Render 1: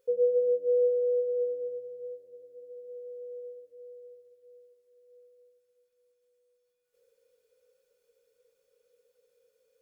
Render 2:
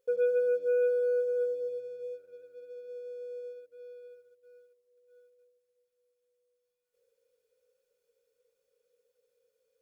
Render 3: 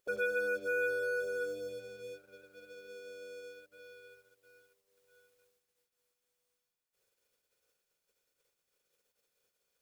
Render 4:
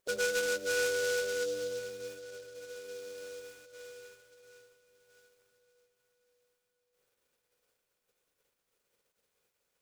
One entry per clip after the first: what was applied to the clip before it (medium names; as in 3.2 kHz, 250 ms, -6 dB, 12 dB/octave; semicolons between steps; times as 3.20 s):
waveshaping leveller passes 1; trim -3.5 dB
spectral peaks clipped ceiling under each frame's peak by 24 dB; trim -5.5 dB
echo that smears into a reverb 520 ms, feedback 52%, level -15 dB; delay time shaken by noise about 4.8 kHz, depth 0.064 ms; trim +2 dB